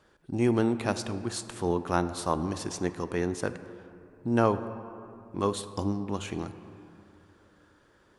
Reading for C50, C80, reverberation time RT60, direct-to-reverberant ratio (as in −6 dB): 12.0 dB, 13.0 dB, 2.9 s, 11.0 dB